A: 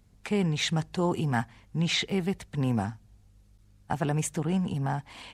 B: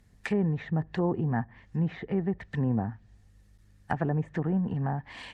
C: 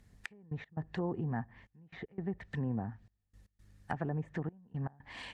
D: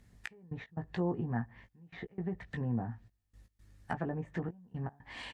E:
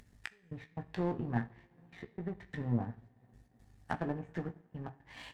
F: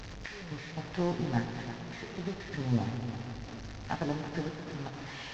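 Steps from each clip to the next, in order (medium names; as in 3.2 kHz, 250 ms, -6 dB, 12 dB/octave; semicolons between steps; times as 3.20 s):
peaking EQ 1.8 kHz +13.5 dB 0.21 oct; low-pass that closes with the level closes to 770 Hz, closed at -24 dBFS
compression 1.5:1, threshold -41 dBFS, peak gain reduction 7 dB; trance gate "xx..x.xxxxx" 117 bpm -24 dB; trim -1.5 dB
doubling 17 ms -6 dB
two-slope reverb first 0.49 s, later 3.9 s, from -20 dB, DRR 7.5 dB; upward compressor, threshold -45 dBFS; power-law waveshaper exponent 1.4; trim +2.5 dB
one-bit delta coder 32 kbps, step -41 dBFS; multi-head delay 110 ms, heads all three, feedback 45%, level -14 dB; trim +3 dB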